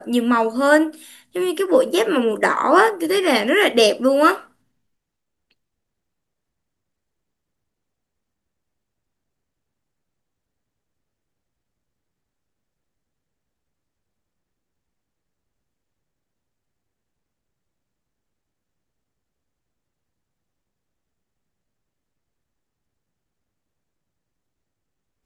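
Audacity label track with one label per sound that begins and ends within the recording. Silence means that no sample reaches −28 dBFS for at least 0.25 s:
1.360000	4.390000	sound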